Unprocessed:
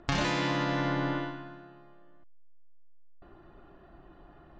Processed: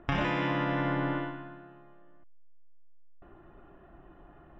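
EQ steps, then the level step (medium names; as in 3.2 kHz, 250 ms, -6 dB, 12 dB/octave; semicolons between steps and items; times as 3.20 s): Savitzky-Golay filter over 25 samples; 0.0 dB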